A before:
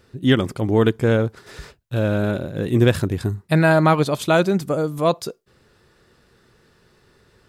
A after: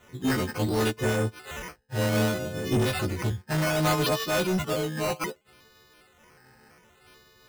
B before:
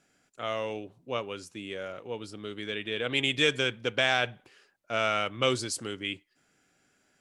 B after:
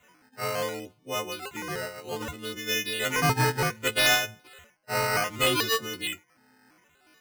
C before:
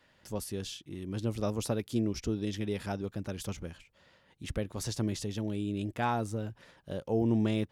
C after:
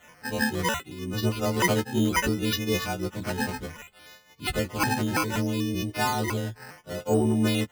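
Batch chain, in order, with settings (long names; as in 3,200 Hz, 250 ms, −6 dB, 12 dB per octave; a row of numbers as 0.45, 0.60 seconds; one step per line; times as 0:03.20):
every partial snapped to a pitch grid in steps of 3 semitones
sample-and-hold swept by an LFO 9×, swing 100% 0.65 Hz
soft clipping −18 dBFS
amplitude modulation by smooth noise, depth 65%
loudness normalisation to −27 LKFS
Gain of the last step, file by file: +1.0, +5.0, +10.5 decibels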